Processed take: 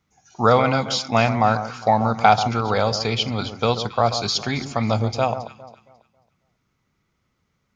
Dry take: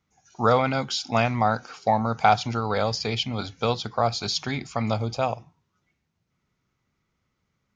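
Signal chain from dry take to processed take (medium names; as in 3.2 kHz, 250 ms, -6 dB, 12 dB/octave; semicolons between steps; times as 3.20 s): echo whose repeats swap between lows and highs 136 ms, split 1.3 kHz, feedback 53%, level -10 dB; trim +4 dB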